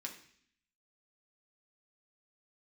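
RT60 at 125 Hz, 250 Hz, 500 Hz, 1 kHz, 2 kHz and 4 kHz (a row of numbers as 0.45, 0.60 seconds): 0.75, 0.85, 0.60, 0.55, 0.75, 0.75 seconds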